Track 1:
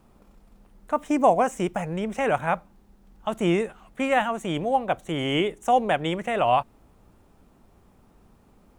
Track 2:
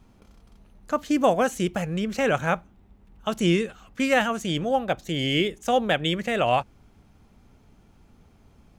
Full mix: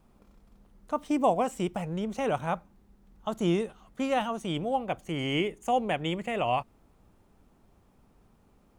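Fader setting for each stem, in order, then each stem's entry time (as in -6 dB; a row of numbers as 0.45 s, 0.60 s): -6.0 dB, -14.5 dB; 0.00 s, 0.00 s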